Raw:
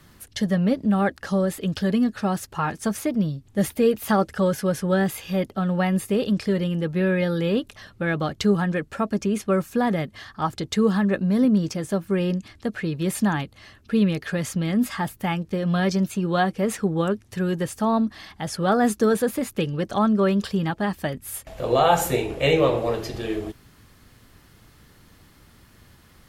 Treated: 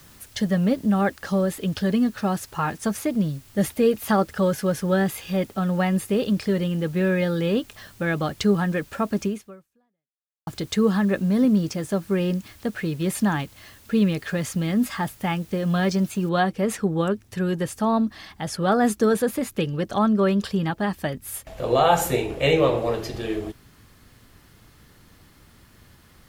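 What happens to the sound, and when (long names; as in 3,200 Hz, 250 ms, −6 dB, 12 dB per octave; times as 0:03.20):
0:09.26–0:10.47: fade out exponential
0:16.29: noise floor change −53 dB −70 dB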